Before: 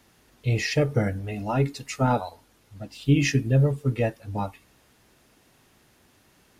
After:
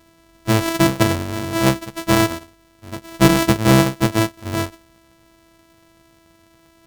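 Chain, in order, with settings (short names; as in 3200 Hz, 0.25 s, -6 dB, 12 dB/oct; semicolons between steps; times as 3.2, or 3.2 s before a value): sample sorter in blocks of 128 samples; speed mistake 25 fps video run at 24 fps; gain +6.5 dB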